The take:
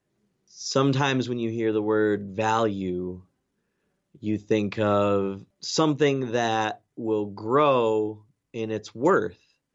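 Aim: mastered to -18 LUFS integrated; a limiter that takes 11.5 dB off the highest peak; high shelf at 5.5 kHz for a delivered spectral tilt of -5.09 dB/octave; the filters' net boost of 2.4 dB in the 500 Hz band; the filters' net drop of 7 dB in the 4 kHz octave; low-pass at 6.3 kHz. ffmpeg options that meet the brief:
-af "lowpass=6300,equalizer=f=500:t=o:g=3,equalizer=f=4000:t=o:g=-5.5,highshelf=f=5500:g=-6.5,volume=3.76,alimiter=limit=0.422:level=0:latency=1"

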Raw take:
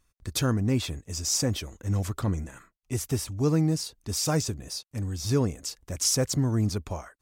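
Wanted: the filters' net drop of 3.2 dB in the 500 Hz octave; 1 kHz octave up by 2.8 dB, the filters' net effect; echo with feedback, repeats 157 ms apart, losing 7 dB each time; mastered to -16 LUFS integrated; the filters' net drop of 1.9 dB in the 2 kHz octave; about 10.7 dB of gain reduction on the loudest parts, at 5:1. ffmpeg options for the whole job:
-af "equalizer=f=500:t=o:g=-5,equalizer=f=1000:t=o:g=6.5,equalizer=f=2000:t=o:g=-5,acompressor=threshold=0.0224:ratio=5,aecho=1:1:157|314|471|628|785:0.447|0.201|0.0905|0.0407|0.0183,volume=10"

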